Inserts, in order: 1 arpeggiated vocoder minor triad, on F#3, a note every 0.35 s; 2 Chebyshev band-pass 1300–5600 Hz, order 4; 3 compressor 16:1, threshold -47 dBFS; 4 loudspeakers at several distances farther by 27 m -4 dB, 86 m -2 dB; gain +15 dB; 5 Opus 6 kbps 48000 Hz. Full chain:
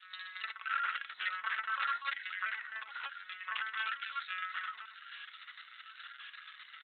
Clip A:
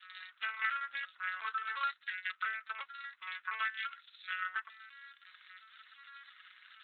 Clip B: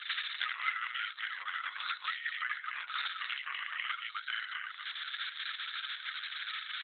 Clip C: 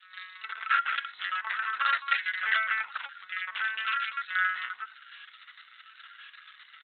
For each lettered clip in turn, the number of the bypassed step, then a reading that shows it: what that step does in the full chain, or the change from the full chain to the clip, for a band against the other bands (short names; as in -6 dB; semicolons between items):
4, 4 kHz band -3.0 dB; 1, momentary loudness spread change -11 LU; 3, mean gain reduction 3.5 dB